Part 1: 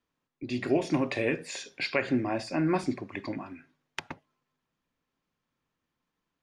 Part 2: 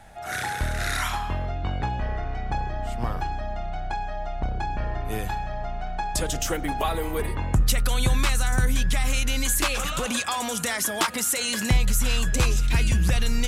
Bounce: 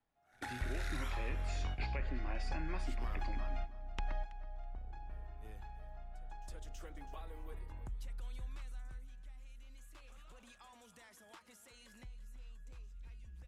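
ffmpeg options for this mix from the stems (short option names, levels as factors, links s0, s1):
-filter_complex "[0:a]volume=0.531,asplit=3[s0][s1][s2];[s1]volume=0.0708[s3];[1:a]asubboost=boost=4.5:cutoff=58,acompressor=threshold=0.0891:ratio=3,volume=0.531,afade=t=out:st=8.2:d=0.68:silence=0.375837,asplit=2[s4][s5];[s5]volume=0.15[s6];[s2]apad=whole_len=594351[s7];[s4][s7]sidechaingate=range=0.0224:threshold=0.00158:ratio=16:detection=peak[s8];[s3][s6]amix=inputs=2:normalize=0,aecho=0:1:326|652|978:1|0.19|0.0361[s9];[s0][s8][s9]amix=inputs=3:normalize=0,highshelf=f=4700:g=-8,acrossover=split=89|1400[s10][s11][s12];[s10]acompressor=threshold=0.0158:ratio=4[s13];[s11]acompressor=threshold=0.00447:ratio=4[s14];[s12]acompressor=threshold=0.00447:ratio=4[s15];[s13][s14][s15]amix=inputs=3:normalize=0"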